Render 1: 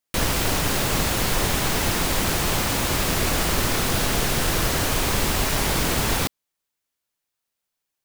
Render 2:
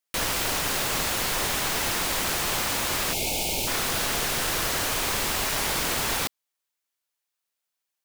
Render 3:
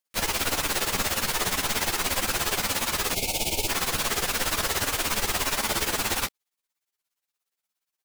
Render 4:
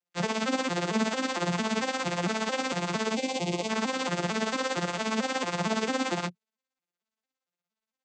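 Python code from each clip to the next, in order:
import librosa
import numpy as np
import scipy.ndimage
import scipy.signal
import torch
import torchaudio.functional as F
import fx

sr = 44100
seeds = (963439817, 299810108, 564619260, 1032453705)

y1 = fx.spec_box(x, sr, start_s=3.13, length_s=0.55, low_hz=930.0, high_hz=2100.0, gain_db=-22)
y1 = fx.low_shelf(y1, sr, hz=370.0, db=-11.0)
y1 = y1 * librosa.db_to_amplitude(-1.5)
y2 = y1 * (1.0 - 0.85 / 2.0 + 0.85 / 2.0 * np.cos(2.0 * np.pi * 17.0 * (np.arange(len(y1)) / sr)))
y2 = fx.ensemble(y2, sr)
y2 = y2 * librosa.db_to_amplitude(6.5)
y3 = fx.vocoder_arp(y2, sr, chord='major triad', root=53, every_ms=226)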